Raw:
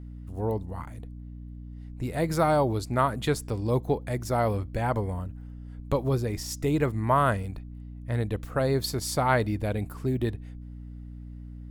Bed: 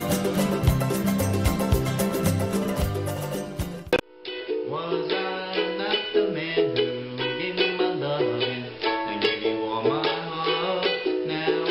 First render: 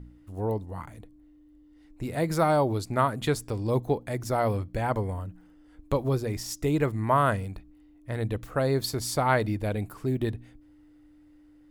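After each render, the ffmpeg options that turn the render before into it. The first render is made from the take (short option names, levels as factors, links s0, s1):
-af "bandreject=f=60:t=h:w=4,bandreject=f=120:t=h:w=4,bandreject=f=180:t=h:w=4,bandreject=f=240:t=h:w=4"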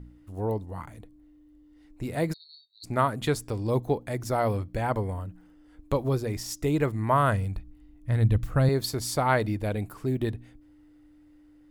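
-filter_complex "[0:a]asplit=3[s0][s1][s2];[s0]afade=t=out:st=2.32:d=0.02[s3];[s1]asuperpass=centerf=4100:order=20:qfactor=5,afade=t=in:st=2.32:d=0.02,afade=t=out:st=2.83:d=0.02[s4];[s2]afade=t=in:st=2.83:d=0.02[s5];[s3][s4][s5]amix=inputs=3:normalize=0,asettb=1/sr,asplit=3[s6][s7][s8];[s6]atrim=end=4.874[s9];[s7]atrim=start=4.87:end=5.28,asetpts=PTS-STARTPTS,afade=t=in:d=0.004:c=qsin,afade=t=out:st=0.406:d=0.004:c=qsin,equalizer=f=6200:w=6.7:g=-7[s10];[s8]atrim=start=5.276[s11];[s9][s10]acrossfade=d=0.004:c1=hsin:c2=qsin[s12];[s12][s11]acrossfade=d=0.004:c1=qsin:c2=hsin,asettb=1/sr,asplit=3[s13][s14][s15];[s13]atrim=end=6.984[s16];[s14]atrim=start=6.98:end=8.69,asetpts=PTS-STARTPTS,afade=t=in:d=0.004:c=qsin,afade=t=out:st=1.706:d=0.004:c=qsin,asubboost=boost=8.5:cutoff=190[s17];[s15]atrim=start=8.686[s18];[s16][s17]acrossfade=d=0.004:c1=hsin:c2=qsin[s19];[s19][s18]acrossfade=d=0.004:c1=qsin:c2=hsin"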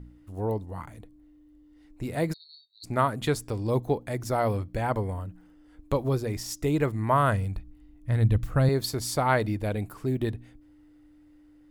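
-af anull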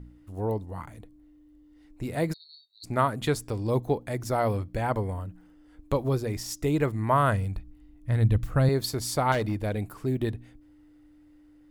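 -filter_complex "[0:a]asettb=1/sr,asplit=3[s0][s1][s2];[s0]atrim=end=9.324[s3];[s1]atrim=start=9.32:end=9.79,asetpts=PTS-STARTPTS,afade=t=in:d=0.004:c=qsin,afade=t=out:st=0.466:d=0.004:c=qsin,asoftclip=type=hard:threshold=0.0794[s4];[s2]atrim=start=9.786[s5];[s3][s4]acrossfade=d=0.004:c1=hsin:c2=qsin[s6];[s6][s5]acrossfade=d=0.004:c1=qsin:c2=hsin"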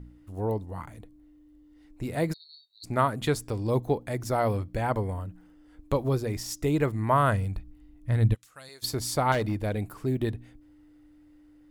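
-filter_complex "[0:a]asplit=3[s0][s1][s2];[s0]afade=t=out:st=8.33:d=0.02[s3];[s1]bandpass=f=7300:t=q:w=0.97,afade=t=in:st=8.33:d=0.02,afade=t=out:st=8.82:d=0.02[s4];[s2]afade=t=in:st=8.82:d=0.02[s5];[s3][s4][s5]amix=inputs=3:normalize=0"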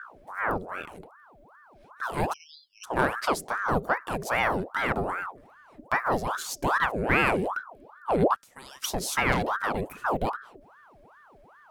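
-filter_complex "[0:a]asplit=2[s0][s1];[s1]asoftclip=type=tanh:threshold=0.0708,volume=0.562[s2];[s0][s2]amix=inputs=2:normalize=0,aeval=exprs='val(0)*sin(2*PI*890*n/s+890*0.7/2.5*sin(2*PI*2.5*n/s))':c=same"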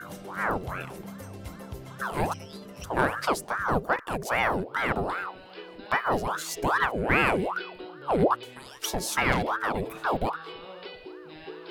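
-filter_complex "[1:a]volume=0.126[s0];[0:a][s0]amix=inputs=2:normalize=0"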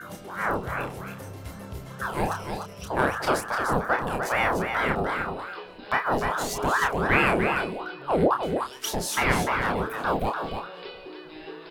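-filter_complex "[0:a]asplit=2[s0][s1];[s1]adelay=29,volume=0.562[s2];[s0][s2]amix=inputs=2:normalize=0,aecho=1:1:298:0.473"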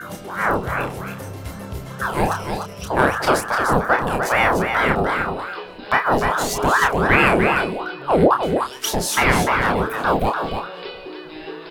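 -af "volume=2.24,alimiter=limit=0.708:level=0:latency=1"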